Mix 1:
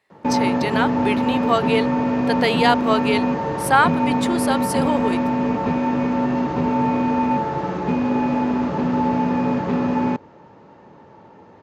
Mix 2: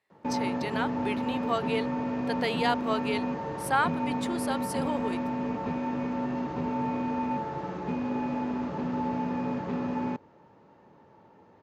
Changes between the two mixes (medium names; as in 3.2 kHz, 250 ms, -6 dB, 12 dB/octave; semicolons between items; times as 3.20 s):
speech -10.0 dB; background -10.5 dB